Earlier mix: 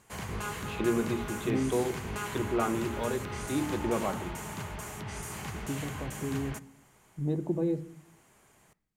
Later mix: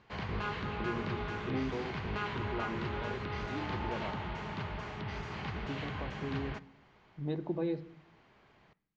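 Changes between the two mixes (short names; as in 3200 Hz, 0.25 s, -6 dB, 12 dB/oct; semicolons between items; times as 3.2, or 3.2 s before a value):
first voice -10.5 dB; second voice: add tilt shelf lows -7 dB, about 790 Hz; master: add steep low-pass 4600 Hz 36 dB/oct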